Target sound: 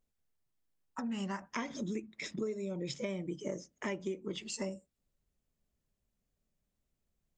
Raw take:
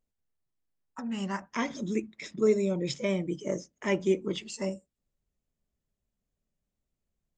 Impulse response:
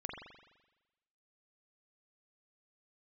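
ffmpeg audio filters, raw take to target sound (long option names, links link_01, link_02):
-af "acompressor=threshold=-35dB:ratio=10,volume=1dB"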